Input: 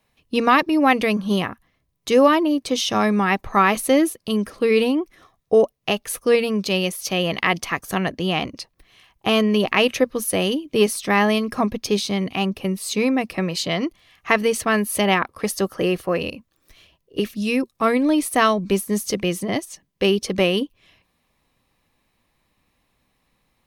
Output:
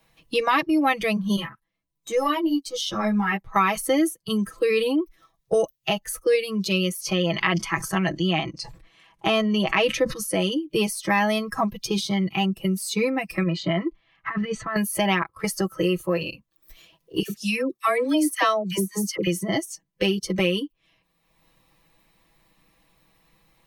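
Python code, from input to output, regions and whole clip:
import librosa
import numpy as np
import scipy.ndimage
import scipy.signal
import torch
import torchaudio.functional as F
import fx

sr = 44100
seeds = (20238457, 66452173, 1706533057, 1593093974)

y = fx.chain(x, sr, fx.transient(attack_db=-10, sustain_db=-5),
    fx.ensemble(), at=(1.36, 3.56))
y = fx.chain(y, sr, fx.lowpass(hz=10000.0, slope=12),
    fx.sustainer(db_per_s=89.0), at=(7.0, 10.57))
y = fx.chain(y, sr, fx.lowpass(hz=2000.0, slope=12),
    fx.peak_eq(hz=470.0, db=-6.0, octaves=0.23),
    fx.over_compress(threshold_db=-24.0, ratio=-0.5), at=(13.43, 14.76))
y = fx.chain(y, sr, fx.highpass(hz=170.0, slope=6),
    fx.dispersion(late='lows', ms=75.0, hz=940.0), at=(17.22, 19.27))
y = fx.noise_reduce_blind(y, sr, reduce_db=14)
y = y + 0.69 * np.pad(y, (int(6.1 * sr / 1000.0), 0))[:len(y)]
y = fx.band_squash(y, sr, depth_pct=70)
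y = y * librosa.db_to_amplitude(-4.0)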